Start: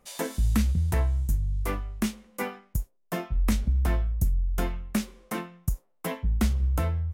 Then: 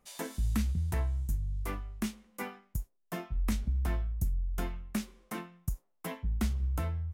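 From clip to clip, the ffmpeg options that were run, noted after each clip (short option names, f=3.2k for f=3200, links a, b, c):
-af "equalizer=f=520:t=o:w=0.37:g=-4.5,volume=-6.5dB"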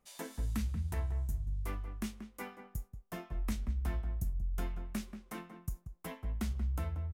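-filter_complex "[0:a]asplit=2[a][b];[b]adelay=183,lowpass=f=1.5k:p=1,volume=-8.5dB,asplit=2[c][d];[d]adelay=183,lowpass=f=1.5k:p=1,volume=0.21,asplit=2[e][f];[f]adelay=183,lowpass=f=1.5k:p=1,volume=0.21[g];[a][c][e][g]amix=inputs=4:normalize=0,volume=-5dB"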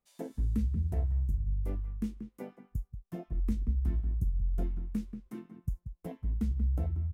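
-af "afwtdn=0.0112,volume=5dB"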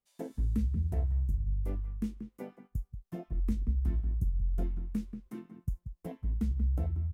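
-af "agate=range=-6dB:threshold=-55dB:ratio=16:detection=peak"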